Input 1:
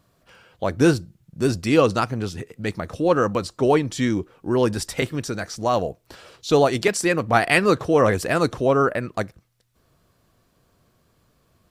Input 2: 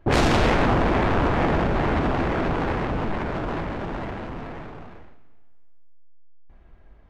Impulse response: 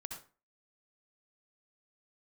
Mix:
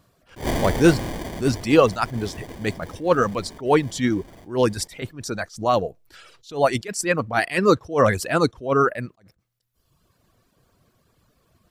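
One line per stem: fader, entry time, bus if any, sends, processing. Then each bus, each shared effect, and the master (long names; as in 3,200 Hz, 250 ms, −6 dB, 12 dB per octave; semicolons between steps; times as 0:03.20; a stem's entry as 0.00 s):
+2.5 dB, 0.00 s, no send, reverb reduction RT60 1.1 s
+1.5 dB, 0.30 s, no send, notch filter 870 Hz; decimation without filtering 33×; automatic ducking −17 dB, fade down 1.70 s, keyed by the first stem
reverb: not used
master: level that may rise only so fast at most 190 dB per second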